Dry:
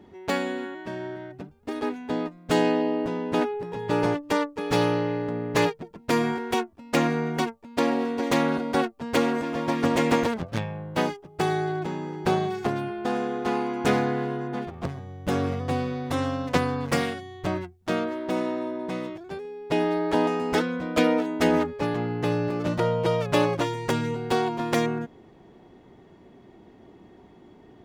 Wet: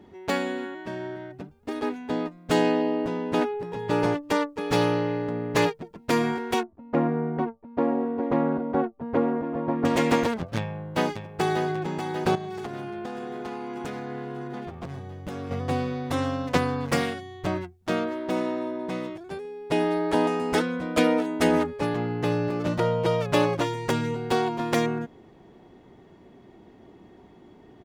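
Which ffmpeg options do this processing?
-filter_complex "[0:a]asettb=1/sr,asplit=3[s0][s1][s2];[s0]atrim=end=6.634[s3];[s1]atrim=start=6.63:end=9.85,asetpts=PTS-STARTPTS,afade=t=in:d=0.004:c=qsin,afade=t=out:st=3.216:d=0.004:c=qsin,lowpass=1000[s4];[s2]atrim=start=9.846[s5];[s3][s4]acrossfade=d=0.004:c1=hsin:c2=qsin[s6];[s6][s5]acrossfade=d=0.004:c1=qsin:c2=hsin,asplit=2[s7][s8];[s8]afade=t=in:st=10.56:d=0.01,afade=t=out:st=11.65:d=0.01,aecho=0:1:590|1180|1770|2360|2950|3540|4130|4720|5310:0.398107|0.25877|0.1682|0.10933|0.0710646|0.046192|0.0300248|0.0195161|0.0126855[s9];[s7][s9]amix=inputs=2:normalize=0,asettb=1/sr,asplit=3[s10][s11][s12];[s10]atrim=end=12.354[s13];[s11]atrim=start=12.35:end=15.51,asetpts=PTS-STARTPTS,afade=t=in:d=0.004:c=qsin,afade=t=out:st=3.156:d=0.004:c=qsin,acompressor=threshold=0.0316:ratio=10:attack=3.2:release=140:knee=1:detection=peak[s14];[s12]atrim=start=15.506[s15];[s13][s14]acrossfade=d=0.004:c1=hsin:c2=qsin[s16];[s16][s15]acrossfade=d=0.004:c1=qsin:c2=hsin,asettb=1/sr,asplit=3[s17][s18][s19];[s17]atrim=end=19.104[s20];[s18]atrim=start=19.1:end=21.89,asetpts=PTS-STARTPTS,afade=t=in:d=0.004:c=qsin,afade=t=out:st=2.786:d=0.004:c=qsin,equalizer=f=9400:t=o:w=0.45:g=6.5[s21];[s19]atrim=start=21.886[s22];[s20][s21]acrossfade=d=0.004:c1=hsin:c2=qsin[s23];[s23][s22]acrossfade=d=0.004:c1=qsin:c2=hsin"

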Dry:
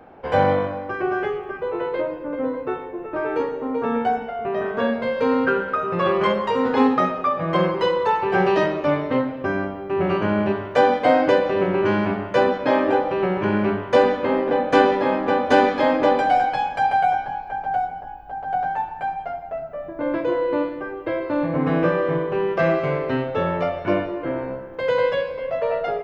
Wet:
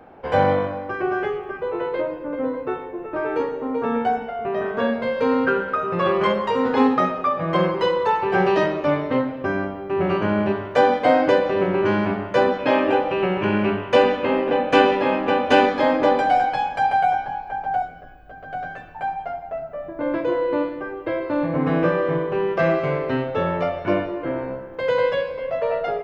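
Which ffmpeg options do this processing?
-filter_complex "[0:a]asettb=1/sr,asplit=3[s0][s1][s2];[s0]atrim=end=12.584[s3];[s1]atrim=start=12.58:end=15.66,asetpts=PTS-STARTPTS,afade=t=in:d=0.004:c=qsin,afade=t=out:st=3.076:d=0.004:c=qsin,equalizer=f=2700:w=4.1:g=10[s4];[s2]atrim=start=15.656[s5];[s3][s4]acrossfade=d=0.004:c1=hsin:c2=qsin[s6];[s6][s5]acrossfade=d=0.004:c1=qsin:c2=hsin,asettb=1/sr,asplit=3[s7][s8][s9];[s7]atrim=end=17.824[s10];[s8]atrim=start=17.82:end=18.95,asetpts=PTS-STARTPTS,afade=t=in:d=0.004:c=qsin,afade=t=out:st=1.126:d=0.004:c=qsin,asuperstop=centerf=870:order=4:qfactor=2.3[s11];[s9]atrim=start=18.946[s12];[s10][s11]acrossfade=d=0.004:c1=hsin:c2=qsin[s13];[s13][s12]acrossfade=d=0.004:c1=qsin:c2=hsin"

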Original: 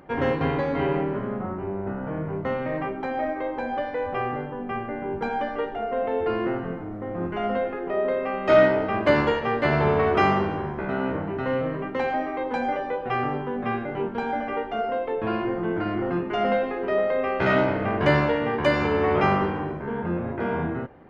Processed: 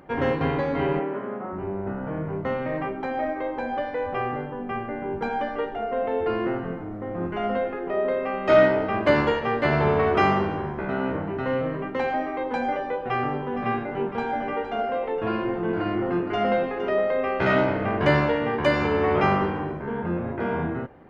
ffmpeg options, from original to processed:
-filter_complex "[0:a]asplit=3[s0][s1][s2];[s0]afade=t=out:st=0.99:d=0.02[s3];[s1]highpass=280,lowpass=3100,afade=t=in:st=0.99:d=0.02,afade=t=out:st=1.52:d=0.02[s4];[s2]afade=t=in:st=1.52:d=0.02[s5];[s3][s4][s5]amix=inputs=3:normalize=0,asettb=1/sr,asplit=3[s6][s7][s8];[s6]atrim=end=12.964[s9];[s7]atrim=start=12.96:end=16.9,asetpts=PTS-STARTPTS,afade=t=in:d=0.004:c=qsin,afade=t=out:st=3.936:d=0.004:c=qsin,aecho=1:1:463:0.316,atrim=end_sample=173754[s10];[s8]atrim=start=16.896[s11];[s9][s10]acrossfade=d=0.004:c1=hsin:c2=qsin[s12];[s12][s11]acrossfade=d=0.004:c1=qsin:c2=hsin"

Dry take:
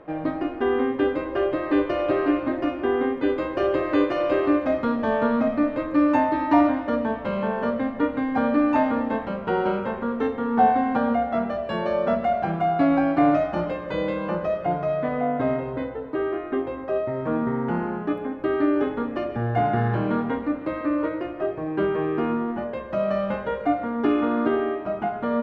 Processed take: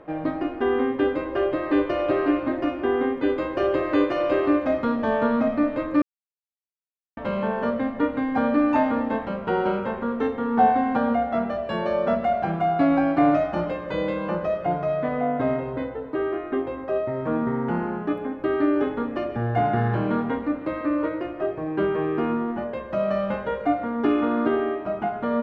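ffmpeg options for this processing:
-filter_complex "[0:a]asplit=3[s0][s1][s2];[s0]atrim=end=6.02,asetpts=PTS-STARTPTS,afade=t=out:st=6.016:d=0.004:c=hsin[s3];[s1]atrim=start=6.02:end=7.17,asetpts=PTS-STARTPTS,volume=0[s4];[s2]atrim=start=7.17,asetpts=PTS-STARTPTS,afade=t=in:d=0.004:c=hsin[s5];[s3][s4][s5]concat=n=3:v=0:a=1"

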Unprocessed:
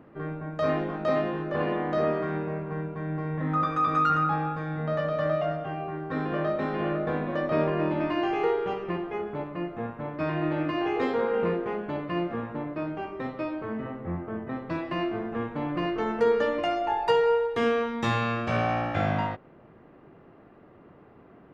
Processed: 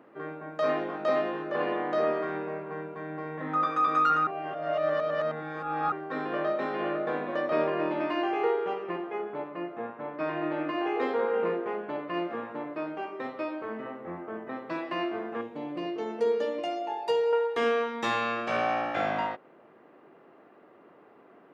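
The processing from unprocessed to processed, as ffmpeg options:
-filter_complex "[0:a]asettb=1/sr,asplit=3[s0][s1][s2];[s0]atrim=end=8.224[s3];[s1]atrim=start=8.22:end=12.14,asetpts=PTS-STARTPTS,afade=t=in:d=0.004:c=qsin,afade=t=out:st=3.916:d=0.004:c=qsin,highshelf=f=4200:g=-9[s4];[s2]atrim=start=12.136[s5];[s3][s4]acrossfade=d=0.004:c1=hsin:c2=qsin[s6];[s6][s5]acrossfade=d=0.004:c1=qsin:c2=hsin,asettb=1/sr,asplit=3[s7][s8][s9];[s7]atrim=end=15.414[s10];[s8]atrim=start=15.41:end=17.33,asetpts=PTS-STARTPTS,afade=t=in:d=0.004:c=qsin,afade=t=out:st=1.916:d=0.004:c=qsin,equalizer=f=1400:t=o:w=1.5:g=-13[s11];[s9]atrim=start=17.326[s12];[s10][s11]acrossfade=d=0.004:c1=hsin:c2=qsin[s13];[s13][s12]acrossfade=d=0.004:c1=qsin:c2=hsin,asplit=3[s14][s15][s16];[s14]atrim=end=4.272[s17];[s15]atrim=start=4.268:end=5.922,asetpts=PTS-STARTPTS,areverse[s18];[s16]atrim=start=5.918[s19];[s17][s18]acrossfade=d=0.004:c1=hsin:c2=hsin[s20];[s20][s19]acrossfade=d=0.004:c1=hsin:c2=hsin,highpass=330"

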